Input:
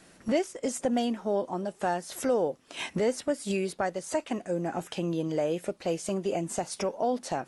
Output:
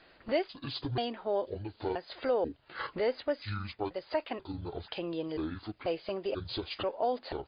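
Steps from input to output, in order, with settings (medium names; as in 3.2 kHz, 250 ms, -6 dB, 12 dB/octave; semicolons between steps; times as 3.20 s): pitch shift switched off and on -11 st, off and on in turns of 488 ms; peaking EQ 190 Hz -13.5 dB 1.2 oct; MP3 64 kbps 11.025 kHz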